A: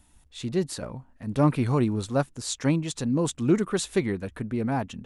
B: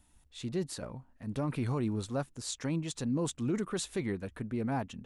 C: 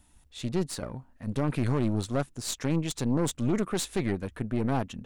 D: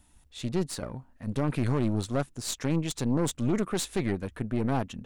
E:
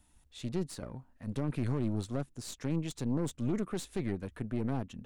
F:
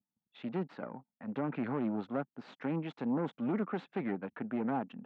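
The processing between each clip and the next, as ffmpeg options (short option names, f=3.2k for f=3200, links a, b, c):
-af "alimiter=limit=-17.5dB:level=0:latency=1:release=25,volume=-6dB"
-af "aeval=exprs='0.0708*(cos(1*acos(clip(val(0)/0.0708,-1,1)))-cos(1*PI/2))+0.0112*(cos(4*acos(clip(val(0)/0.0708,-1,1)))-cos(4*PI/2))':c=same,volume=4.5dB"
-af anull
-filter_complex "[0:a]acrossover=split=450[a][b];[b]acompressor=threshold=-41dB:ratio=2[c];[a][c]amix=inputs=2:normalize=0,volume=-5dB"
-af "anlmdn=0.000631,highpass=f=190:w=0.5412,highpass=f=190:w=1.3066,equalizer=f=360:t=q:w=4:g=-4,equalizer=f=820:t=q:w=4:g=7,equalizer=f=1.4k:t=q:w=4:g=5,lowpass=f=2.7k:w=0.5412,lowpass=f=2.7k:w=1.3066,volume=2dB"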